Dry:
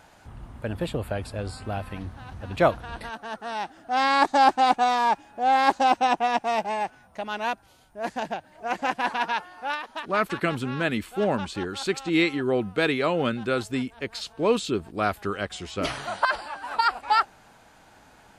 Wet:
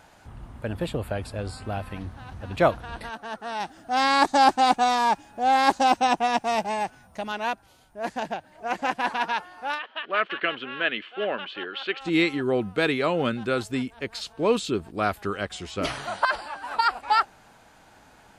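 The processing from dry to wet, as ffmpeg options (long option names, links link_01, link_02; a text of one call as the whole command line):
ffmpeg -i in.wav -filter_complex "[0:a]asettb=1/sr,asplit=3[link_01][link_02][link_03];[link_01]atrim=end=3.604[link_04];[link_02]atrim=start=3.6:end=7.32,asetpts=PTS-STARTPTS,afade=type=in:duration=0.004:curve=qsin,afade=type=out:start_time=3.716:duration=0.004:curve=qsin,bass=frequency=250:gain=5,treble=frequency=4000:gain=6[link_05];[link_03]atrim=start=7.316[link_06];[link_04][link_05]acrossfade=duration=0.004:curve1=hsin:curve2=qsin[link_07];[link_07][link_06]acrossfade=duration=0.004:curve1=qsin:curve2=hsin,asplit=3[link_08][link_09][link_10];[link_08]afade=type=out:start_time=9.78:duration=0.02[link_11];[link_09]highpass=460,equalizer=frequency=880:width_type=q:width=4:gain=-8,equalizer=frequency=1700:width_type=q:width=4:gain=4,equalizer=frequency=3000:width_type=q:width=4:gain=10,lowpass=frequency=3400:width=0.5412,lowpass=frequency=3400:width=1.3066,afade=type=in:start_time=9.78:duration=0.02,afade=type=out:start_time=12:duration=0.02[link_12];[link_10]afade=type=in:start_time=12:duration=0.02[link_13];[link_11][link_12][link_13]amix=inputs=3:normalize=0" out.wav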